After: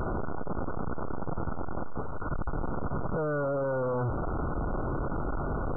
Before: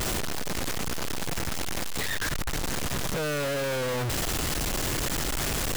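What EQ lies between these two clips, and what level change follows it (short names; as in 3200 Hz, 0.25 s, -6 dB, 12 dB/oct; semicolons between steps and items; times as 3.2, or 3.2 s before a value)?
brick-wall FIR low-pass 1500 Hz; 0.0 dB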